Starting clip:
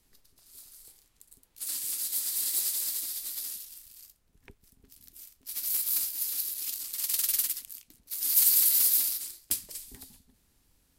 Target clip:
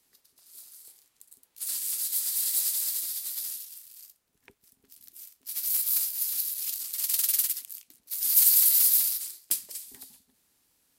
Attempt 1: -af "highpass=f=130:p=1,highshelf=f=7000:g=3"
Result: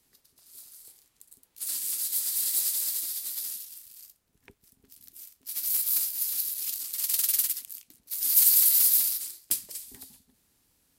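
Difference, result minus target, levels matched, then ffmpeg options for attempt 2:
125 Hz band +7.0 dB
-af "highpass=f=390:p=1,highshelf=f=7000:g=3"

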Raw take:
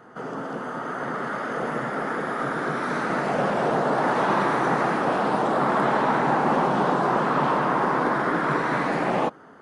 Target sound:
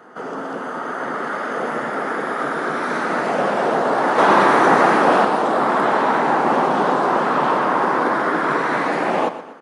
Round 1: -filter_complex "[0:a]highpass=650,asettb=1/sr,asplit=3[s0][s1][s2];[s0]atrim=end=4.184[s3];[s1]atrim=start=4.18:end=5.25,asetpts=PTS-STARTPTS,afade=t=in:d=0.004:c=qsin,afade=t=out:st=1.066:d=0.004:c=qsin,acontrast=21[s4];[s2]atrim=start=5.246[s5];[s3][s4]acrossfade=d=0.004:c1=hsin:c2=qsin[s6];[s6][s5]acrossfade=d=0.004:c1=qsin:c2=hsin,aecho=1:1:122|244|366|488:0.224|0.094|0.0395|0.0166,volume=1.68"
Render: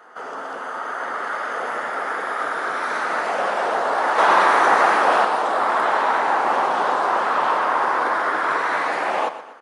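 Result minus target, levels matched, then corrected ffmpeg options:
250 Hz band -10.5 dB
-filter_complex "[0:a]highpass=240,asettb=1/sr,asplit=3[s0][s1][s2];[s0]atrim=end=4.184[s3];[s1]atrim=start=4.18:end=5.25,asetpts=PTS-STARTPTS,afade=t=in:d=0.004:c=qsin,afade=t=out:st=1.066:d=0.004:c=qsin,acontrast=21[s4];[s2]atrim=start=5.246[s5];[s3][s4]acrossfade=d=0.004:c1=hsin:c2=qsin[s6];[s6][s5]acrossfade=d=0.004:c1=qsin:c2=hsin,aecho=1:1:122|244|366|488:0.224|0.094|0.0395|0.0166,volume=1.68"

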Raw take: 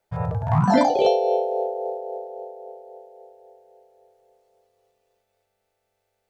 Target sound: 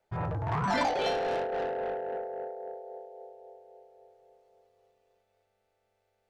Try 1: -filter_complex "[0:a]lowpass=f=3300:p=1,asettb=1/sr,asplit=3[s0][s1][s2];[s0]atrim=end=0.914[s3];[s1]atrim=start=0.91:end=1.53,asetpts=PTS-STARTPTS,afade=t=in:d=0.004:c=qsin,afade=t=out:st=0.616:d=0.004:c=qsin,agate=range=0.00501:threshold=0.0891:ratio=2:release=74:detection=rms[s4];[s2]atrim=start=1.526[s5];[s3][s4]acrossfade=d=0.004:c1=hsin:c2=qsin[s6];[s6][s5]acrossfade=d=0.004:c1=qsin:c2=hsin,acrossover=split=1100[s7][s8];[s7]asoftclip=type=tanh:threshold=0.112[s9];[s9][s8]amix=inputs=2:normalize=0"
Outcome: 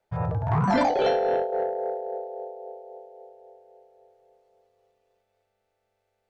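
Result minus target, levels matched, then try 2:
saturation: distortion -7 dB
-filter_complex "[0:a]lowpass=f=3300:p=1,asettb=1/sr,asplit=3[s0][s1][s2];[s0]atrim=end=0.914[s3];[s1]atrim=start=0.91:end=1.53,asetpts=PTS-STARTPTS,afade=t=in:d=0.004:c=qsin,afade=t=out:st=0.616:d=0.004:c=qsin,agate=range=0.00501:threshold=0.0891:ratio=2:release=74:detection=rms[s4];[s2]atrim=start=1.526[s5];[s3][s4]acrossfade=d=0.004:c1=hsin:c2=qsin[s6];[s6][s5]acrossfade=d=0.004:c1=qsin:c2=hsin,acrossover=split=1100[s7][s8];[s7]asoftclip=type=tanh:threshold=0.0299[s9];[s9][s8]amix=inputs=2:normalize=0"

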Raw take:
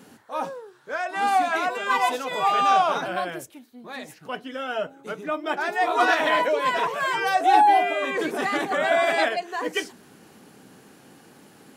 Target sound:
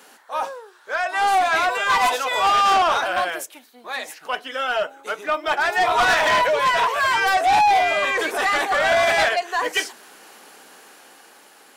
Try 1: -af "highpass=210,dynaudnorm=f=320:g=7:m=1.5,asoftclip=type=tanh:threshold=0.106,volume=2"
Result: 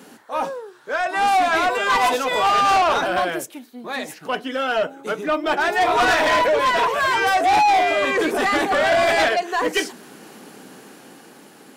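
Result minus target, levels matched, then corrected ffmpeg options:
250 Hz band +9.5 dB
-af "highpass=660,dynaudnorm=f=320:g=7:m=1.5,asoftclip=type=tanh:threshold=0.106,volume=2"

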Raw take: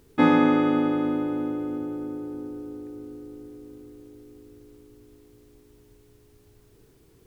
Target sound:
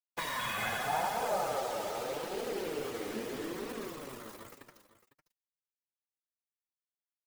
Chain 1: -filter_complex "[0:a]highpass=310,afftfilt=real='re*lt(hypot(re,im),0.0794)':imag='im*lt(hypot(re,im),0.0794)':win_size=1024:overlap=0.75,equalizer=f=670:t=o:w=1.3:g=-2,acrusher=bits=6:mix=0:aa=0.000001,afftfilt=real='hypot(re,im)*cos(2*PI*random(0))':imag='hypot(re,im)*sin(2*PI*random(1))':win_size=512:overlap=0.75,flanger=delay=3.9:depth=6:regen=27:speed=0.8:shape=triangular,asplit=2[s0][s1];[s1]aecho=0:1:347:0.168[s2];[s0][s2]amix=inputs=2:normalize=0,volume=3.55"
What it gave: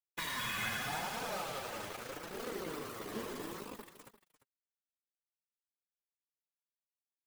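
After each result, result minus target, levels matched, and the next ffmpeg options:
echo 156 ms early; 500 Hz band -4.0 dB
-filter_complex "[0:a]highpass=310,afftfilt=real='re*lt(hypot(re,im),0.0794)':imag='im*lt(hypot(re,im),0.0794)':win_size=1024:overlap=0.75,equalizer=f=670:t=o:w=1.3:g=-2,acrusher=bits=6:mix=0:aa=0.000001,afftfilt=real='hypot(re,im)*cos(2*PI*random(0))':imag='hypot(re,im)*sin(2*PI*random(1))':win_size=512:overlap=0.75,flanger=delay=3.9:depth=6:regen=27:speed=0.8:shape=triangular,asplit=2[s0][s1];[s1]aecho=0:1:503:0.168[s2];[s0][s2]amix=inputs=2:normalize=0,volume=3.55"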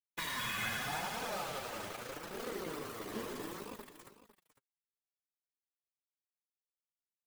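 500 Hz band -4.0 dB
-filter_complex "[0:a]highpass=310,afftfilt=real='re*lt(hypot(re,im),0.0794)':imag='im*lt(hypot(re,im),0.0794)':win_size=1024:overlap=0.75,equalizer=f=670:t=o:w=1.3:g=9,acrusher=bits=6:mix=0:aa=0.000001,afftfilt=real='hypot(re,im)*cos(2*PI*random(0))':imag='hypot(re,im)*sin(2*PI*random(1))':win_size=512:overlap=0.75,flanger=delay=3.9:depth=6:regen=27:speed=0.8:shape=triangular,asplit=2[s0][s1];[s1]aecho=0:1:503:0.168[s2];[s0][s2]amix=inputs=2:normalize=0,volume=3.55"

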